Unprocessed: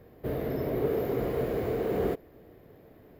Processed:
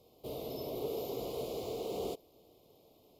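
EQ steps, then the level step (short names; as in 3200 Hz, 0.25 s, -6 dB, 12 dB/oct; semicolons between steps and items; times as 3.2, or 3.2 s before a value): Butterworth band-stop 1700 Hz, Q 0.73; air absorption 80 m; pre-emphasis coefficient 0.97; +14.5 dB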